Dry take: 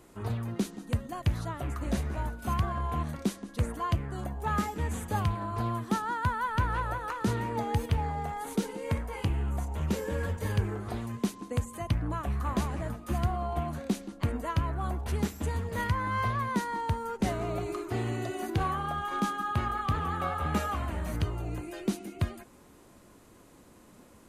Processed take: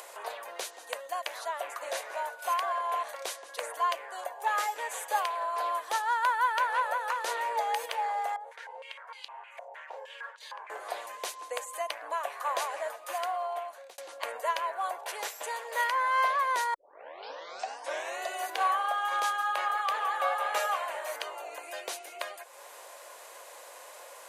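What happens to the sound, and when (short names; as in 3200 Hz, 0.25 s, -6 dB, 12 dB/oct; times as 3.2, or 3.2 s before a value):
8.36–10.7 stepped band-pass 6.5 Hz 580–4000 Hz
12.89–13.98 fade out equal-power
16.74 tape start 1.47 s
whole clip: elliptic high-pass 540 Hz, stop band 70 dB; notch 1300 Hz, Q 8.4; upward compressor, threshold -45 dBFS; gain +6 dB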